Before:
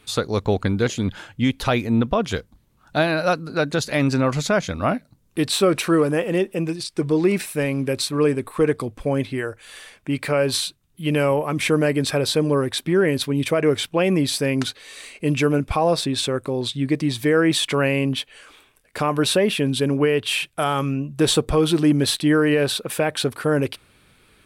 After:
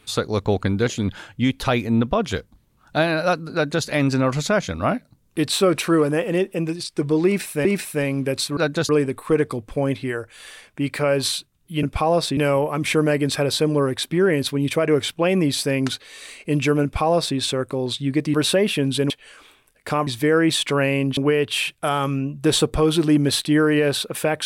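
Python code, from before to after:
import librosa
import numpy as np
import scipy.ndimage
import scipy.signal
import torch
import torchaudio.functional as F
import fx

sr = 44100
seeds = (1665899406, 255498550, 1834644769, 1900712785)

y = fx.edit(x, sr, fx.duplicate(start_s=3.54, length_s=0.32, to_s=8.18),
    fx.repeat(start_s=7.26, length_s=0.39, count=2),
    fx.duplicate(start_s=15.58, length_s=0.54, to_s=11.12),
    fx.swap(start_s=17.09, length_s=1.1, other_s=19.16, other_length_s=0.76), tone=tone)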